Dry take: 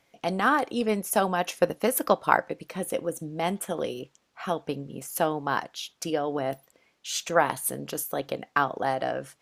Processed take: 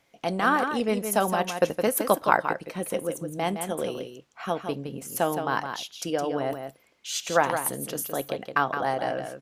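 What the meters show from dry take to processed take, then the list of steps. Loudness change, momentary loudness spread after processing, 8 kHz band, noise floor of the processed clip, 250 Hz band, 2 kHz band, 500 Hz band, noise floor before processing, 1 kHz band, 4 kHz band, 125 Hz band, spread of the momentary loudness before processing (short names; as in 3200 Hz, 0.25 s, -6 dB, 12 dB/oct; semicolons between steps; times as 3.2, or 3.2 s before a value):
+0.5 dB, 10 LU, +0.5 dB, -64 dBFS, +0.5 dB, +0.5 dB, +0.5 dB, -69 dBFS, +0.5 dB, +0.5 dB, +1.0 dB, 11 LU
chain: echo 0.165 s -7.5 dB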